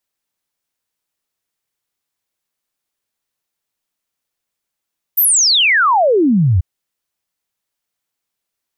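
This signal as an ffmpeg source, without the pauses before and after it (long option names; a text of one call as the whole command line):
ffmpeg -f lavfi -i "aevalsrc='0.355*clip(min(t,1.44-t)/0.01,0,1)*sin(2*PI*15000*1.44/log(81/15000)*(exp(log(81/15000)*t/1.44)-1))':duration=1.44:sample_rate=44100" out.wav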